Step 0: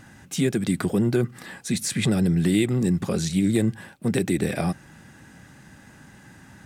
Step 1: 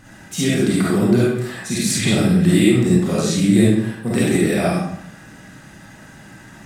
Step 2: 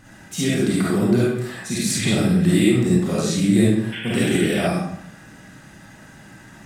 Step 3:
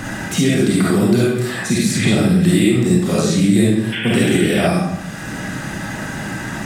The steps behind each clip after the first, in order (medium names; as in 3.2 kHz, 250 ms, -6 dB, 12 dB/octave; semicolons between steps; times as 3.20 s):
algorithmic reverb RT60 0.72 s, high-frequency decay 0.85×, pre-delay 10 ms, DRR -7.5 dB
painted sound noise, 3.92–4.67 s, 1.4–3.5 kHz -30 dBFS; trim -2.5 dB
three bands compressed up and down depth 70%; trim +4 dB